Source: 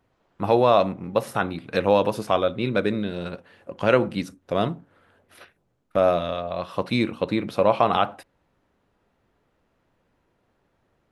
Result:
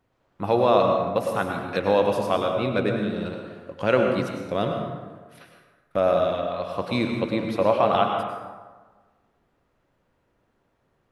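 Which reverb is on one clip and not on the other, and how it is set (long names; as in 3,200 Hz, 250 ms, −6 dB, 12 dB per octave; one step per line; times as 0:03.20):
dense smooth reverb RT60 1.4 s, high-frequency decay 0.55×, pre-delay 85 ms, DRR 2.5 dB
level −2.5 dB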